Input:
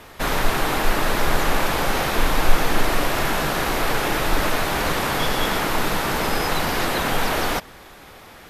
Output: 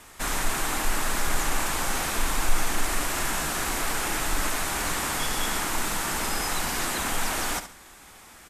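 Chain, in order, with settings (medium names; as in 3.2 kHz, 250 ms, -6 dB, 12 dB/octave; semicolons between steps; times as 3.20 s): ten-band graphic EQ 125 Hz -6 dB, 500 Hz -7 dB, 4 kHz -3 dB, 8 kHz +12 dB; in parallel at -9 dB: saturation -14 dBFS, distortion -12 dB; on the sum: feedback delay 70 ms, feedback 25%, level -11 dB; trim -8 dB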